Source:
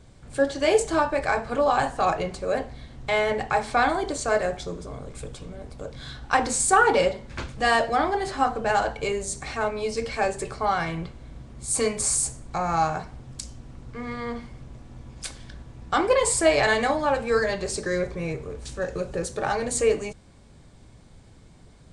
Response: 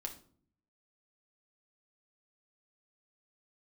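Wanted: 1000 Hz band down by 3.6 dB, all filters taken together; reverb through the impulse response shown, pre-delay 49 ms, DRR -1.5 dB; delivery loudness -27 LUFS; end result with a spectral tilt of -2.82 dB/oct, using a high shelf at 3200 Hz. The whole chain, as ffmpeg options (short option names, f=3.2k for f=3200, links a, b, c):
-filter_complex "[0:a]equalizer=f=1k:t=o:g=-5.5,highshelf=f=3.2k:g=4,asplit=2[a][b];[1:a]atrim=start_sample=2205,adelay=49[c];[b][c]afir=irnorm=-1:irlink=0,volume=3.5dB[d];[a][d]amix=inputs=2:normalize=0,volume=-5.5dB"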